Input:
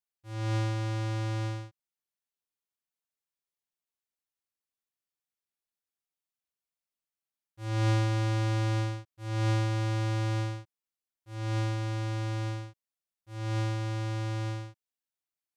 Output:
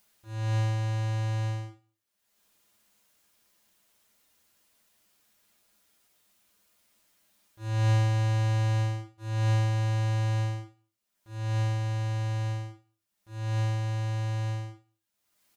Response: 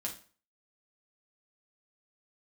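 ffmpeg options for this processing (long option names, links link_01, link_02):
-filter_complex "[0:a]acompressor=mode=upward:threshold=-49dB:ratio=2.5,aecho=1:1:61|122|183|244:0.0891|0.0481|0.026|0.014[link_01];[1:a]atrim=start_sample=2205,afade=type=out:start_time=0.17:duration=0.01,atrim=end_sample=7938[link_02];[link_01][link_02]afir=irnorm=-1:irlink=0"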